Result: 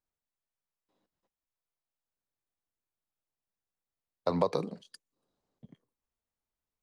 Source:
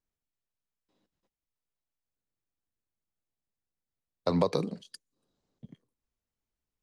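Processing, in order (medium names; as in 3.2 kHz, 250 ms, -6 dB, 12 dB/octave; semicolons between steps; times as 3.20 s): peaking EQ 860 Hz +6.5 dB 2.1 oct; trim -5.5 dB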